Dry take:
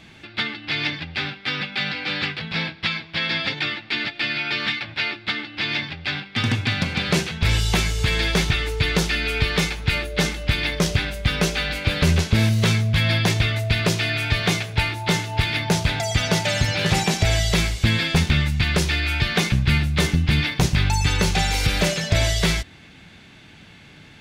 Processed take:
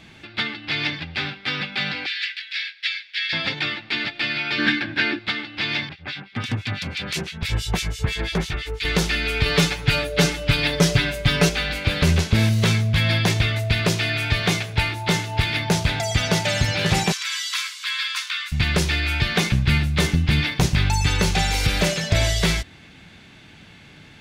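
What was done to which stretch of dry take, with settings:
2.06–3.33 elliptic high-pass 1700 Hz, stop band 80 dB
4.58–5.19 small resonant body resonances 280/1600 Hz, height 16 dB, ringing for 30 ms
5.89–8.85 harmonic tremolo 6 Hz, depth 100%, crossover 1800 Hz
9.45–11.49 comb 7 ms, depth 99%
17.12–18.52 rippled Chebyshev high-pass 1000 Hz, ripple 3 dB

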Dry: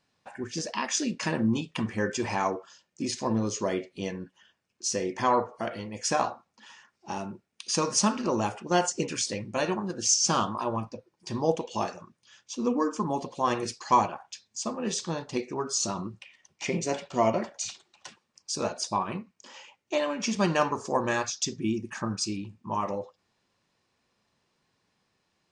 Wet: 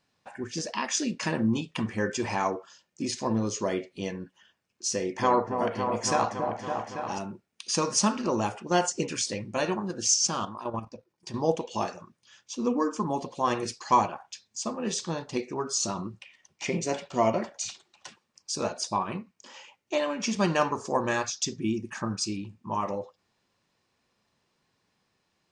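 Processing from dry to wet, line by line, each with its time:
4.91–7.19 repeats that get brighter 0.28 s, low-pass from 750 Hz, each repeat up 1 oct, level -3 dB
10.27–11.36 level quantiser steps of 10 dB

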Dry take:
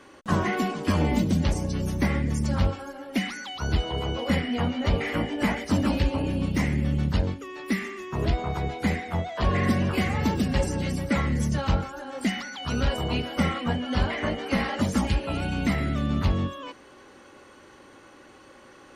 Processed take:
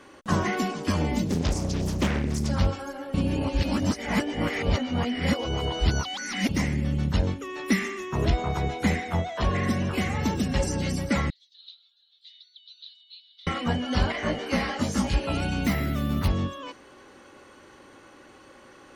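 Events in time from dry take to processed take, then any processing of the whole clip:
1.27–2.5 Doppler distortion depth 0.89 ms
3.14–6.49 reverse
7.06–10.6 notch 4700 Hz, Q 8.8
11.3–13.47 Butterworth band-pass 3800 Hz, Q 6.3
14.12–15.14 detuned doubles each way 30 cents
15.64–16.28 careless resampling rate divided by 3×, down none, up hold
whole clip: dynamic EQ 5800 Hz, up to +6 dB, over -54 dBFS, Q 1.5; vocal rider within 4 dB 0.5 s

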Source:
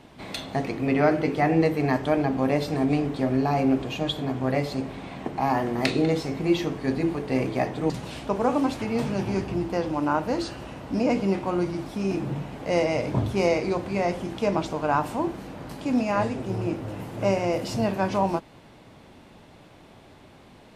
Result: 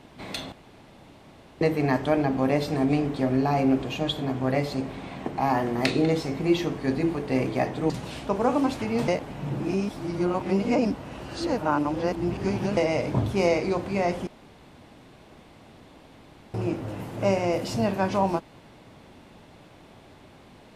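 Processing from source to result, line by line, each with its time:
0.52–1.61 room tone
9.08–12.77 reverse
14.27–16.54 room tone

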